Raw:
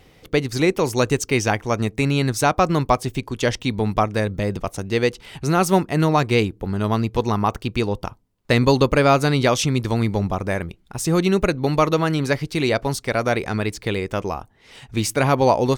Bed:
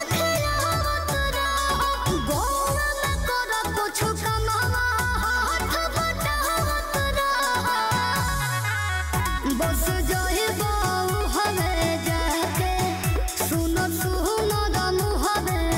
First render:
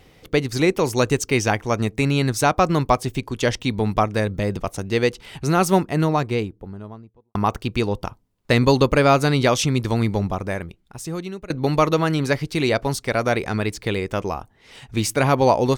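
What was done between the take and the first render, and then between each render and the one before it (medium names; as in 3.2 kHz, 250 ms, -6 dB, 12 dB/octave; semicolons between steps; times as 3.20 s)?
5.61–7.35 s: studio fade out; 10.10–11.50 s: fade out, to -21.5 dB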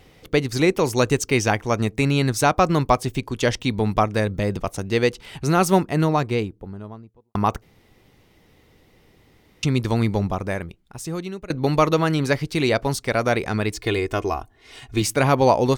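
7.62–9.63 s: room tone; 13.72–15.02 s: comb 2.8 ms, depth 61%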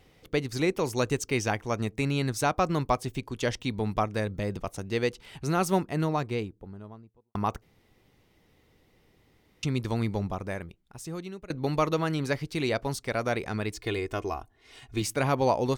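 trim -8 dB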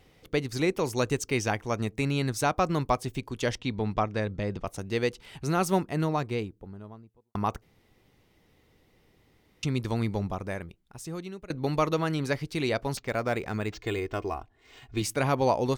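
3.58–4.67 s: low-pass 5.3 kHz; 12.97–14.97 s: decimation joined by straight lines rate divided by 4×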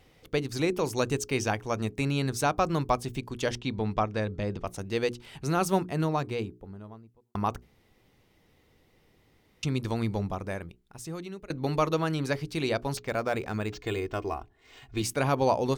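dynamic bell 2 kHz, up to -5 dB, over -51 dBFS, Q 6.9; hum notches 60/120/180/240/300/360/420 Hz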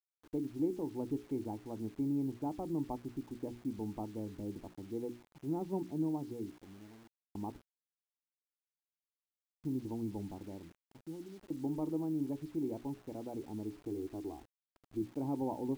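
cascade formant filter u; bit crusher 10-bit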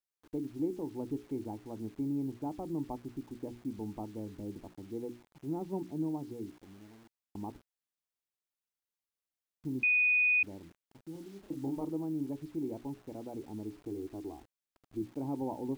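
9.83–10.43 s: bleep 2.48 kHz -23.5 dBFS; 11.12–11.85 s: doubling 30 ms -3.5 dB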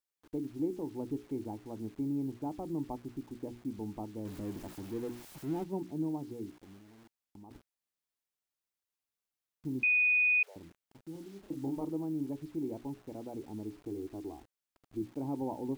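4.25–5.64 s: jump at every zero crossing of -44 dBFS; 6.78–7.51 s: compression 3:1, threshold -53 dBFS; 9.86–10.56 s: steep high-pass 440 Hz 72 dB/octave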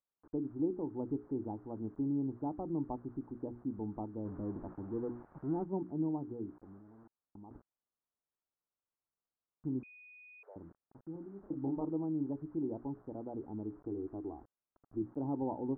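steep low-pass 1.4 kHz 36 dB/octave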